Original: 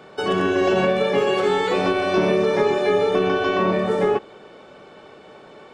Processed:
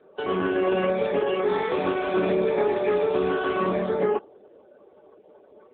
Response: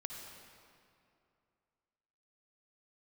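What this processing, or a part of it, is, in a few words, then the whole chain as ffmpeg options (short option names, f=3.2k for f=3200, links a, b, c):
mobile call with aggressive noise cancelling: -filter_complex "[0:a]lowpass=f=6.3k:w=0.5412,lowpass=f=6.3k:w=1.3066,asplit=3[a][b][c];[a]afade=t=out:st=0.82:d=0.02[d];[b]highshelf=f=2.4k:g=-2.5,afade=t=in:st=0.82:d=0.02,afade=t=out:st=1.47:d=0.02[e];[c]afade=t=in:st=1.47:d=0.02[f];[d][e][f]amix=inputs=3:normalize=0,highpass=f=170:w=0.5412,highpass=f=170:w=1.3066,afftdn=nr=19:nf=-38,volume=-3.5dB" -ar 8000 -c:a libopencore_amrnb -b:a 7950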